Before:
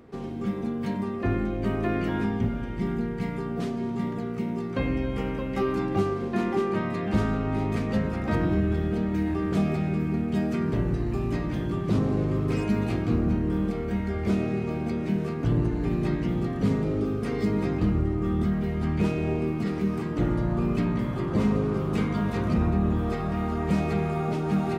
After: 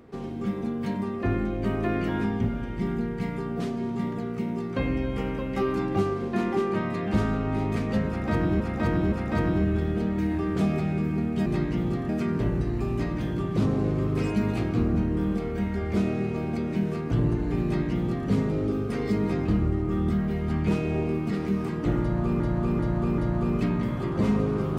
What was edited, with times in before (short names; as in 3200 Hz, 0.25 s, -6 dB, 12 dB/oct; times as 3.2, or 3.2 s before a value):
8.08–8.6 loop, 3 plays
15.97–16.6 copy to 10.42
20.34–20.73 loop, 4 plays